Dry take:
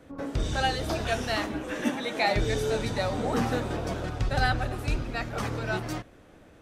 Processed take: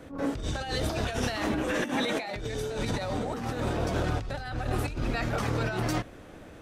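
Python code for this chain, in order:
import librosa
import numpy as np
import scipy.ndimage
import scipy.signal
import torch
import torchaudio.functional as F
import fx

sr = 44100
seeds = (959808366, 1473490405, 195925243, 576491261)

y = fx.over_compress(x, sr, threshold_db=-33.0, ratio=-1.0)
y = fx.attack_slew(y, sr, db_per_s=140.0)
y = y * librosa.db_to_amplitude(2.5)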